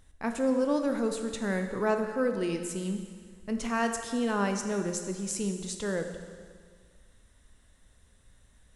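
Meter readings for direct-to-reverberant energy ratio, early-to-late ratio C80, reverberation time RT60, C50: 5.5 dB, 8.5 dB, 1.8 s, 7.0 dB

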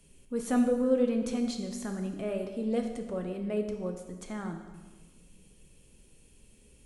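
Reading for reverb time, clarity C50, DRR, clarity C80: 1.4 s, 7.0 dB, 4.0 dB, 8.5 dB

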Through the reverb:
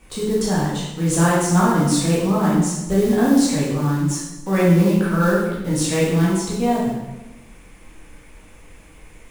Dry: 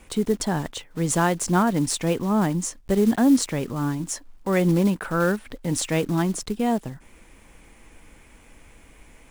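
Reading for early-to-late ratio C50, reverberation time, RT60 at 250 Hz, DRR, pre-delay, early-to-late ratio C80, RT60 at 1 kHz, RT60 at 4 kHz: 0.5 dB, 1.0 s, 1.2 s, -7.5 dB, 9 ms, 3.5 dB, 0.95 s, 0.85 s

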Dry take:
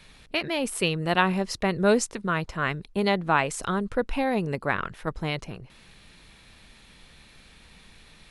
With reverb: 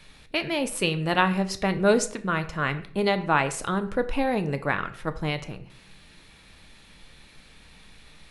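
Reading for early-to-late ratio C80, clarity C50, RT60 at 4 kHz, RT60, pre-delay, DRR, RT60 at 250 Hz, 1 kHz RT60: 17.5 dB, 14.5 dB, 0.40 s, 0.55 s, 3 ms, 9.0 dB, 0.65 s, 0.50 s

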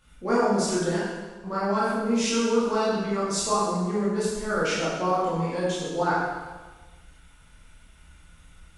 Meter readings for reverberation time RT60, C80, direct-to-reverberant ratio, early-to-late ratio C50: 1.3 s, 1.0 dB, -10.0 dB, -2.0 dB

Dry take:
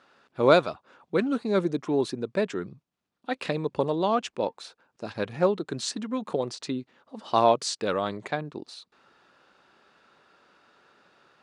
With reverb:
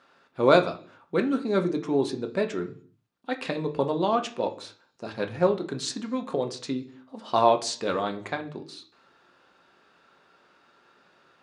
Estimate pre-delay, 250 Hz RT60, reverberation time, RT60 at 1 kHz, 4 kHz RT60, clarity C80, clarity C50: 3 ms, n/a, 0.50 s, 0.50 s, 0.55 s, 18.5 dB, 14.0 dB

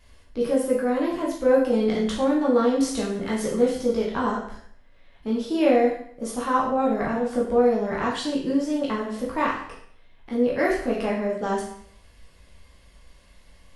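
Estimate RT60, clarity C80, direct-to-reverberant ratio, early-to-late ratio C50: 0.60 s, 7.5 dB, -5.0 dB, 4.5 dB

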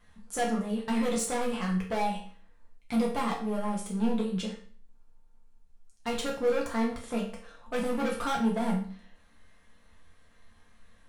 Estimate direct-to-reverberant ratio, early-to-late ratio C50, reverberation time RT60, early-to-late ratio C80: -3.5 dB, 6.5 dB, 0.45 s, 11.0 dB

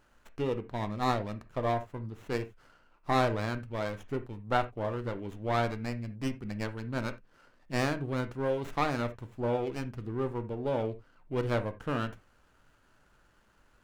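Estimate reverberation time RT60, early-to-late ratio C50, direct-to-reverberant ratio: not exponential, 14.5 dB, 8.0 dB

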